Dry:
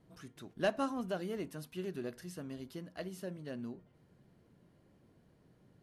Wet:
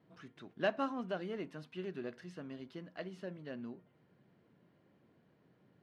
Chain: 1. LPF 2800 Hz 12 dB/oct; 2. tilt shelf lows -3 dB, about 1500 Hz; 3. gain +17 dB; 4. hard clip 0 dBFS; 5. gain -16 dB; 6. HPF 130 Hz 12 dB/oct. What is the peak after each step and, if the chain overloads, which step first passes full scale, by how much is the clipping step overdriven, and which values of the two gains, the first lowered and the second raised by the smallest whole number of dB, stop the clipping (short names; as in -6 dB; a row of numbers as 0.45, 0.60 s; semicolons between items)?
-22.5, -23.0, -6.0, -6.0, -22.0, -20.0 dBFS; no overload